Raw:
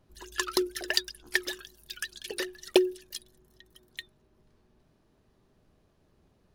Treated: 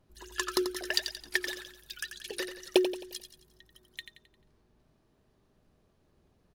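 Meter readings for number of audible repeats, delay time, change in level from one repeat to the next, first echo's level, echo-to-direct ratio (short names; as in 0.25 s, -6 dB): 4, 88 ms, -7.0 dB, -9.0 dB, -8.0 dB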